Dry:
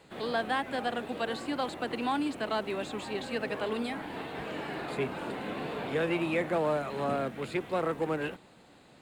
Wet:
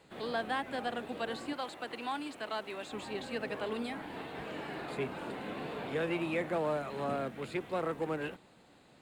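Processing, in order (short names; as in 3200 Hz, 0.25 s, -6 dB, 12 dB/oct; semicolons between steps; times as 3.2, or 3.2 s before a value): 1.53–2.92 low shelf 380 Hz -10.5 dB; gain -4 dB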